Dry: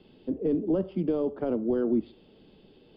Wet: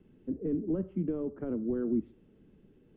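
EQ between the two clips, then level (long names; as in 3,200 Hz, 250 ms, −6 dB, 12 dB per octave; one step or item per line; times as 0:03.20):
low-pass filter 1,900 Hz 24 dB per octave
parametric band 750 Hz −14 dB 1.8 octaves
0.0 dB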